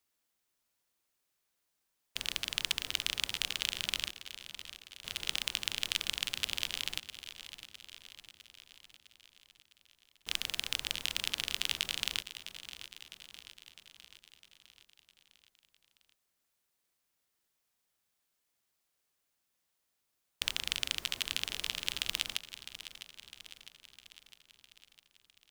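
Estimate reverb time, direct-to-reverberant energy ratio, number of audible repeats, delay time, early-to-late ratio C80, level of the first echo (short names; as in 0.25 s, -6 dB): none, none, 5, 0.656 s, none, -13.0 dB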